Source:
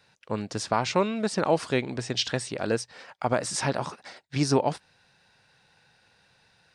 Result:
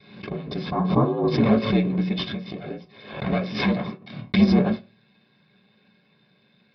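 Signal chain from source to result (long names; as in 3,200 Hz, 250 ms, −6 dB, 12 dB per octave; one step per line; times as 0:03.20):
lower of the sound and its delayed copy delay 2 ms
0:00.70–0:01.28: high shelf with overshoot 1,500 Hz −12.5 dB, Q 3
0:02.33–0:03.26: downward compressor 16 to 1, threshold −36 dBFS, peak gain reduction 14 dB
ring modulation 58 Hz
0:03.93–0:04.36: bit-depth reduction 6 bits, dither none
convolution reverb RT60 0.30 s, pre-delay 3 ms, DRR −6.5 dB
downsampling to 11,025 Hz
background raised ahead of every attack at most 87 dB per second
level −6.5 dB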